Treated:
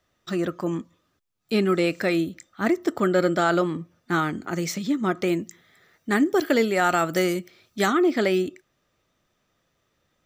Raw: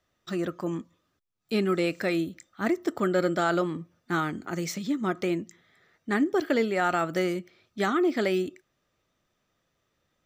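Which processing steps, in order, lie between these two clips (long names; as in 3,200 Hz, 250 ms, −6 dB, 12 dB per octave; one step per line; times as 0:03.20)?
0:05.26–0:07.91: high-shelf EQ 8,800 Hz → 5,300 Hz +11 dB
level +4 dB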